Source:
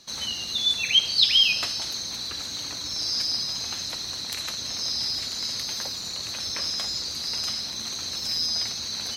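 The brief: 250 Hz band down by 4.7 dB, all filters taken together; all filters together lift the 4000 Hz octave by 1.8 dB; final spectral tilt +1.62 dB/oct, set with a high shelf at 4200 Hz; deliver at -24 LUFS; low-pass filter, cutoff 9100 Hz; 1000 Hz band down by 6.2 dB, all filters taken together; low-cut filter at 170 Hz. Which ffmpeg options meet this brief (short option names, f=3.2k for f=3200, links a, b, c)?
-af "highpass=170,lowpass=9.1k,equalizer=f=250:t=o:g=-4,equalizer=f=1k:t=o:g=-8,equalizer=f=4k:t=o:g=6.5,highshelf=f=4.2k:g=-6.5,volume=-0.5dB"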